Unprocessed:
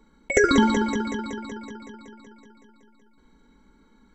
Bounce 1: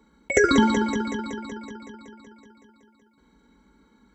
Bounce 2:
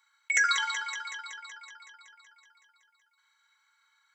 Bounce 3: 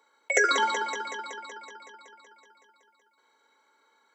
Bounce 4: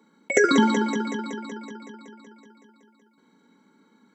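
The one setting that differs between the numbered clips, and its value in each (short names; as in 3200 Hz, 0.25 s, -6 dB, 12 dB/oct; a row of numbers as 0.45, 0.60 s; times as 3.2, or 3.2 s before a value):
HPF, cutoff: 42, 1300, 530, 160 Hz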